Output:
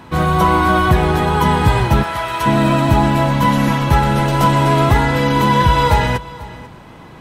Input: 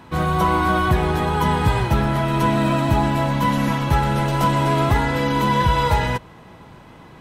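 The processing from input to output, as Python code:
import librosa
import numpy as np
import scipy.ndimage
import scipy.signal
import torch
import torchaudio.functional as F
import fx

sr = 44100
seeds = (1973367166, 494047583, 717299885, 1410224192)

p1 = fx.highpass(x, sr, hz=830.0, slope=12, at=(2.02, 2.45), fade=0.02)
p2 = p1 + fx.echo_single(p1, sr, ms=491, db=-19.0, dry=0)
y = p2 * librosa.db_to_amplitude(5.0)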